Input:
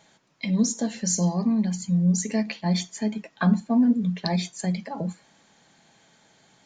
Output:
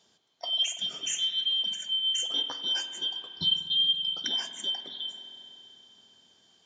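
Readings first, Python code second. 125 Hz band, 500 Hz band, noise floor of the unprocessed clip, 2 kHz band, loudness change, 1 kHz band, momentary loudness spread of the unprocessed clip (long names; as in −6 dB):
−28.0 dB, −17.0 dB, −60 dBFS, −7.0 dB, −2.5 dB, −13.5 dB, 9 LU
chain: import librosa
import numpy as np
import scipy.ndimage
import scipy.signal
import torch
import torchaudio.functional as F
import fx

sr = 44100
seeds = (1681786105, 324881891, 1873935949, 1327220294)

y = fx.band_shuffle(x, sr, order='2413')
y = scipy.signal.sosfilt(scipy.signal.butter(2, 160.0, 'highpass', fs=sr, output='sos'), y)
y = fx.low_shelf(y, sr, hz=300.0, db=5.0)
y = fx.notch(y, sr, hz=3800.0, q=18.0)
y = fx.rev_spring(y, sr, rt60_s=3.5, pass_ms=(47,), chirp_ms=70, drr_db=8.0)
y = F.gain(torch.from_numpy(y), -6.5).numpy()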